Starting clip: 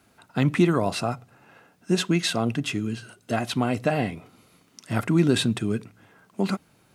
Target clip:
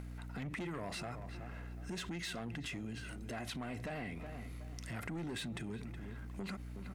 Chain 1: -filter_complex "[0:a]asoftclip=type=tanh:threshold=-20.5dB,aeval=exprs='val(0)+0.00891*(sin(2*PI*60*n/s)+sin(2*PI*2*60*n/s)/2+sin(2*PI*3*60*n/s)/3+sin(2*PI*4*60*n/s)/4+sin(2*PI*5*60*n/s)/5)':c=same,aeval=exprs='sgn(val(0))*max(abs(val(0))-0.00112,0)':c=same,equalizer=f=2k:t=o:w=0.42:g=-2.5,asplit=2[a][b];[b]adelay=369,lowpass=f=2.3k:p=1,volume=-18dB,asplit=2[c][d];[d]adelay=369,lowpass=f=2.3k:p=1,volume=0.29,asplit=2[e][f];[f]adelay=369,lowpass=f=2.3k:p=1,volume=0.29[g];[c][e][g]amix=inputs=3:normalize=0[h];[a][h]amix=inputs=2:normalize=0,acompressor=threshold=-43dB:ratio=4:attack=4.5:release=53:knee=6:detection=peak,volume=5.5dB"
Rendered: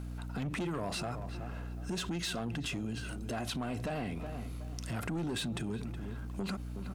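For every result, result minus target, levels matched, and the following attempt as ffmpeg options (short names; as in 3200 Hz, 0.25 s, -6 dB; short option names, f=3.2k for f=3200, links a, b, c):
compressor: peak gain reduction -7.5 dB; 2000 Hz band -3.0 dB
-filter_complex "[0:a]asoftclip=type=tanh:threshold=-20.5dB,aeval=exprs='val(0)+0.00891*(sin(2*PI*60*n/s)+sin(2*PI*2*60*n/s)/2+sin(2*PI*3*60*n/s)/3+sin(2*PI*4*60*n/s)/4+sin(2*PI*5*60*n/s)/5)':c=same,aeval=exprs='sgn(val(0))*max(abs(val(0))-0.00112,0)':c=same,equalizer=f=2k:t=o:w=0.42:g=-2.5,asplit=2[a][b];[b]adelay=369,lowpass=f=2.3k:p=1,volume=-18dB,asplit=2[c][d];[d]adelay=369,lowpass=f=2.3k:p=1,volume=0.29,asplit=2[e][f];[f]adelay=369,lowpass=f=2.3k:p=1,volume=0.29[g];[c][e][g]amix=inputs=3:normalize=0[h];[a][h]amix=inputs=2:normalize=0,acompressor=threshold=-51dB:ratio=4:attack=4.5:release=53:knee=6:detection=peak,volume=5.5dB"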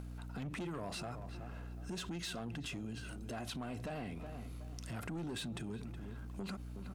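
2000 Hz band -3.0 dB
-filter_complex "[0:a]asoftclip=type=tanh:threshold=-20.5dB,aeval=exprs='val(0)+0.00891*(sin(2*PI*60*n/s)+sin(2*PI*2*60*n/s)/2+sin(2*PI*3*60*n/s)/3+sin(2*PI*4*60*n/s)/4+sin(2*PI*5*60*n/s)/5)':c=same,aeval=exprs='sgn(val(0))*max(abs(val(0))-0.00112,0)':c=same,equalizer=f=2k:t=o:w=0.42:g=7.5,asplit=2[a][b];[b]adelay=369,lowpass=f=2.3k:p=1,volume=-18dB,asplit=2[c][d];[d]adelay=369,lowpass=f=2.3k:p=1,volume=0.29,asplit=2[e][f];[f]adelay=369,lowpass=f=2.3k:p=1,volume=0.29[g];[c][e][g]amix=inputs=3:normalize=0[h];[a][h]amix=inputs=2:normalize=0,acompressor=threshold=-51dB:ratio=4:attack=4.5:release=53:knee=6:detection=peak,volume=5.5dB"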